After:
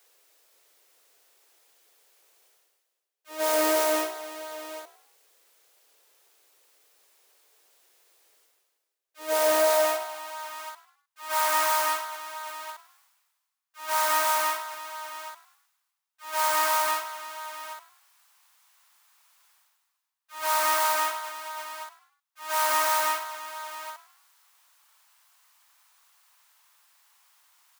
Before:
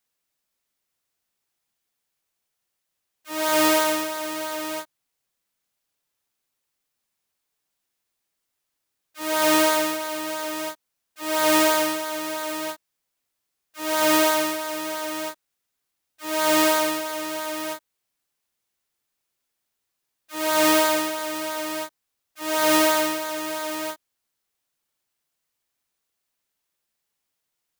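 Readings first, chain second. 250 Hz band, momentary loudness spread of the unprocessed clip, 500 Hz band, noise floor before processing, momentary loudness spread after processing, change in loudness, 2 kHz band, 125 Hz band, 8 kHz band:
-16.0 dB, 15 LU, -5.0 dB, -80 dBFS, 18 LU, -4.0 dB, -4.5 dB, under -30 dB, -4.0 dB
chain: in parallel at -1.5 dB: peak limiter -18 dBFS, peak gain reduction 12 dB; on the sum: gate -20 dBFS, range -15 dB; bass shelf 290 Hz -6 dB; saturation -22 dBFS, distortion -6 dB; reverse; upward compressor, threshold -42 dBFS; reverse; high-pass 220 Hz 12 dB/octave; high-pass sweep 430 Hz -> 1 kHz, 9.18–10.55 s; frequency-shifting echo 103 ms, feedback 38%, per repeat +64 Hz, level -17 dB

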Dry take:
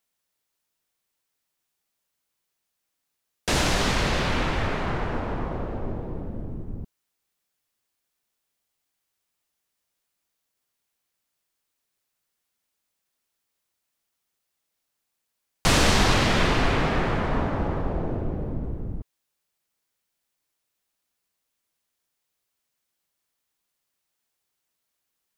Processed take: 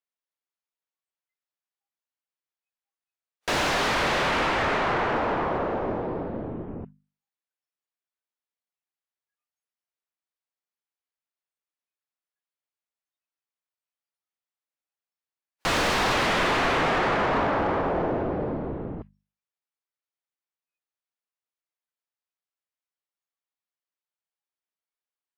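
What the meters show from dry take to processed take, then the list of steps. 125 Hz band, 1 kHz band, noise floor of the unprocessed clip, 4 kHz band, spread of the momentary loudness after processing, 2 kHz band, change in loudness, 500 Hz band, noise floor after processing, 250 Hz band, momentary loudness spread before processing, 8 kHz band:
-7.0 dB, +3.5 dB, -80 dBFS, -2.0 dB, 13 LU, +2.0 dB, +0.5 dB, +2.5 dB, under -85 dBFS, -2.0 dB, 15 LU, -5.5 dB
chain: overdrive pedal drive 28 dB, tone 1.8 kHz, clips at -6 dBFS; spectral noise reduction 24 dB; hum notches 50/100/150/200/250 Hz; trim -8 dB

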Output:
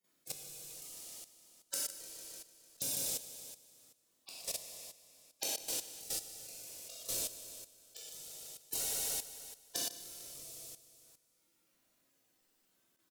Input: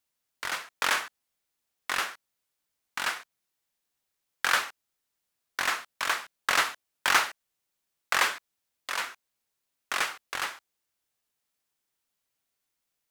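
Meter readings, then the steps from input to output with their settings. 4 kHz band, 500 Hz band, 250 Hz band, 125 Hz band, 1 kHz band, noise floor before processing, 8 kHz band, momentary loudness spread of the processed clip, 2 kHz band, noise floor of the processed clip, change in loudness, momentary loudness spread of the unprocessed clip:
-10.5 dB, -9.0 dB, -6.5 dB, no reading, -26.0 dB, -83 dBFS, 0.0 dB, 16 LU, -27.0 dB, -76 dBFS, -11.0 dB, 15 LU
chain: peaking EQ 260 Hz -12.5 dB 1.5 oct; spectral gate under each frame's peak -20 dB weak; pre-echo 156 ms -16 dB; in parallel at +2 dB: compression 12:1, threshold -37 dBFS, peak gain reduction 7.5 dB; on the sum: saturation -21 dBFS, distortion -21 dB; inverted gate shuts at -41 dBFS, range -35 dB; sine folder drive 8 dB, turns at -36 dBFS; square tremolo 3 Hz, depth 65%, duty 50%; on a send: feedback delay 150 ms, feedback 55%, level -6 dB; on the sum: gated-style reverb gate 140 ms flat, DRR -7 dB; level held to a coarse grid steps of 13 dB; trim +15.5 dB

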